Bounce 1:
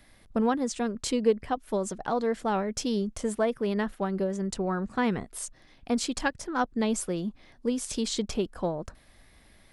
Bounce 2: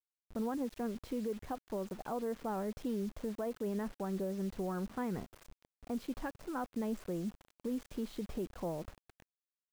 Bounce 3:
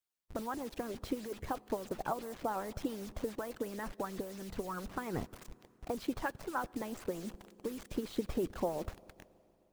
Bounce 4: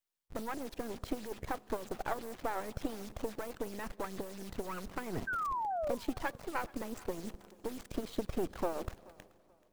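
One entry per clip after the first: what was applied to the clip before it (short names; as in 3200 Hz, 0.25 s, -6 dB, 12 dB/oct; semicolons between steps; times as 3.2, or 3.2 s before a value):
Bessel low-pass 1200 Hz, order 2; limiter -23.5 dBFS, peak gain reduction 11 dB; requantised 8-bit, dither none; gain -6 dB
reverb RT60 3.1 s, pre-delay 10 ms, DRR 17 dB; harmonic-percussive split harmonic -16 dB; gain +8 dB
half-wave gain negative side -12 dB; painted sound fall, 5.27–5.95, 520–1600 Hz -38 dBFS; thinning echo 0.431 s, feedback 30%, level -22 dB; gain +3 dB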